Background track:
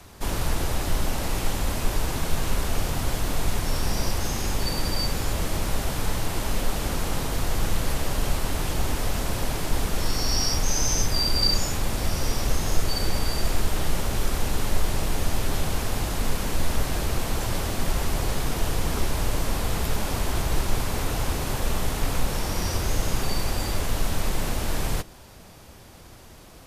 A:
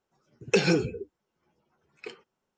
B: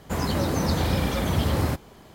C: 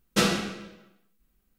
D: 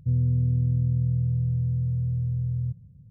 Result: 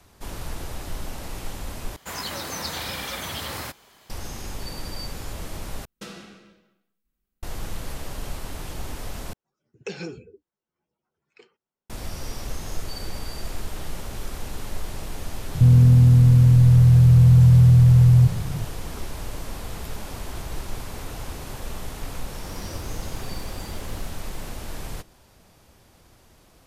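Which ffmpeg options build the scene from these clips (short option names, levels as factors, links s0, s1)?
-filter_complex "[2:a]asplit=2[s0][s1];[0:a]volume=0.398[s2];[s0]tiltshelf=f=700:g=-9.5[s3];[3:a]alimiter=limit=0.15:level=0:latency=1:release=427[s4];[4:a]alimiter=level_in=26.6:limit=0.891:release=50:level=0:latency=1[s5];[s1]aeval=exprs='val(0)+0.5*0.0141*sgn(val(0))':c=same[s6];[s2]asplit=4[s7][s8][s9][s10];[s7]atrim=end=1.964[s11];[s3]atrim=end=2.14,asetpts=PTS-STARTPTS,volume=0.447[s12];[s8]atrim=start=4.096:end=5.854[s13];[s4]atrim=end=1.58,asetpts=PTS-STARTPTS,volume=0.299[s14];[s9]atrim=start=7.426:end=9.334[s15];[1:a]atrim=end=2.57,asetpts=PTS-STARTPTS,volume=0.266[s16];[s10]atrim=start=11.896[s17];[s5]atrim=end=3.1,asetpts=PTS-STARTPTS,volume=0.422,afade=t=in:d=0.004:c=hsin,afade=t=out:st=3.096:d=0.004:c=hsin,adelay=15550[s18];[s6]atrim=end=2.14,asetpts=PTS-STARTPTS,volume=0.133,afade=t=in:d=0.004:c=hsin,afade=t=out:st=2.136:d=0.004:c=hsin,adelay=22340[s19];[s11][s12]acrossfade=d=0.004:c1=hsin:c2=hsin[s20];[s20][s13]acrossfade=d=0.004:c1=hsin:c2=hsin[s21];[s21][s14]acrossfade=d=0.004:c1=hsin:c2=hsin[s22];[s22][s15]acrossfade=d=0.004:c1=hsin:c2=hsin[s23];[s23][s16]acrossfade=d=0.004:c1=hsin:c2=hsin[s24];[s24][s17]acrossfade=d=0.004:c1=hsin:c2=hsin[s25];[s25][s18][s19]amix=inputs=3:normalize=0"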